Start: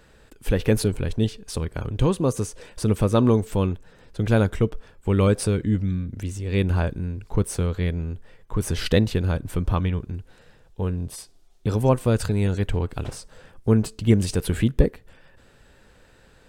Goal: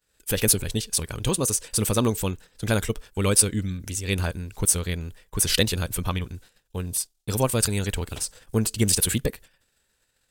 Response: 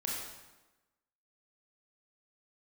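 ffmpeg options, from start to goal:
-af "agate=range=0.0224:threshold=0.00891:ratio=3:detection=peak,crystalizer=i=7.5:c=0,atempo=1.6,volume=0.596"

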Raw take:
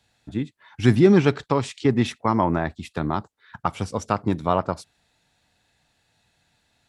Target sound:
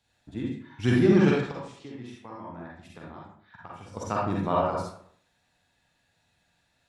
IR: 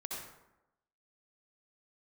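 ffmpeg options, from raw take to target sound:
-filter_complex "[0:a]asettb=1/sr,asplit=3[s0][s1][s2];[s0]atrim=end=1.514[s3];[s1]atrim=start=1.51:end=3.97,asetpts=PTS-STARTPTS,afade=t=in:d=0.004:c=qsin,afade=t=out:st=2.456:d=0.004:c=qsin,acompressor=threshold=0.00794:ratio=2.5[s4];[s2]atrim=start=3.966[s5];[s3][s4]acrossfade=d=0.004:c1=hsin:c2=qsin[s6];[s6][s5]acrossfade=d=0.004:c1=qsin:c2=hsin[s7];[1:a]atrim=start_sample=2205,asetrate=66150,aresample=44100[s8];[s7][s8]afir=irnorm=-1:irlink=0"

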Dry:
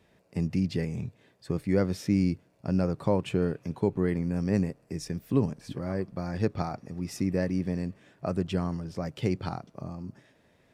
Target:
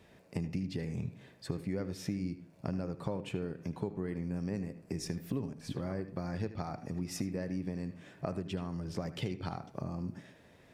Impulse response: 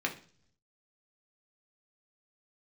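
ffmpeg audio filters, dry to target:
-filter_complex "[0:a]acompressor=threshold=0.0141:ratio=6,asplit=2[s0][s1];[1:a]atrim=start_sample=2205,adelay=76[s2];[s1][s2]afir=irnorm=-1:irlink=0,volume=0.133[s3];[s0][s3]amix=inputs=2:normalize=0,volume=1.5"

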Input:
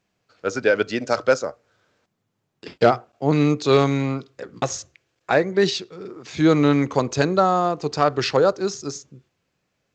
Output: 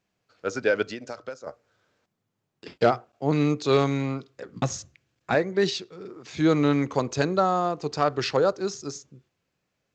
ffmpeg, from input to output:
-filter_complex "[0:a]asettb=1/sr,asplit=3[s0][s1][s2];[s0]atrim=end=0.894[s3];[s1]atrim=start=0.89:end=1.47,asetpts=PTS-STARTPTS,afade=t=in:d=0.004:c=qsin,afade=t=out:st=0.576:d=0.004:c=qsin,acompressor=threshold=0.0398:ratio=12[s4];[s2]atrim=start=1.466[s5];[s3][s4]acrossfade=d=0.004:c1=hsin:c2=qsin[s6];[s6][s5]acrossfade=d=0.004:c1=qsin:c2=hsin,asettb=1/sr,asplit=3[s7][s8][s9];[s7]atrim=end=4.564[s10];[s8]atrim=start=4.56:end=5.35,asetpts=PTS-STARTPTS,afade=t=in:d=0.004:c=qsin,afade=t=out:st=0.786:d=0.004:c=qsin,lowshelf=f=300:t=q:w=1.5:g=7[s11];[s9]atrim=start=5.346[s12];[s10][s11]acrossfade=d=0.004:c1=hsin:c2=qsin[s13];[s13][s12]acrossfade=d=0.004:c1=qsin:c2=hsin,volume=0.596"

